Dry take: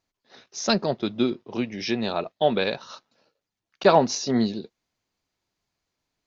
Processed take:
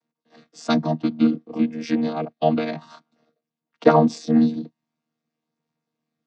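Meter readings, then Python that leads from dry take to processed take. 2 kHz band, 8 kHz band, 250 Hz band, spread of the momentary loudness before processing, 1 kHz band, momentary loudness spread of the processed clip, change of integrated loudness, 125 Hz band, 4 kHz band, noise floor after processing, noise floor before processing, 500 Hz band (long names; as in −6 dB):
−3.0 dB, can't be measured, +6.5 dB, 11 LU, +1.5 dB, 14 LU, +3.0 dB, +5.0 dB, −7.0 dB, below −85 dBFS, below −85 dBFS, +0.5 dB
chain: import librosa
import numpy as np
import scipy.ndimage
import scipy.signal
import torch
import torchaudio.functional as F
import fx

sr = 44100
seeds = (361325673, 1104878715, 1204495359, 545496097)

y = fx.chord_vocoder(x, sr, chord='bare fifth', root=51)
y = fx.hpss(y, sr, part='percussive', gain_db=4)
y = y * 10.0 ** (3.5 / 20.0)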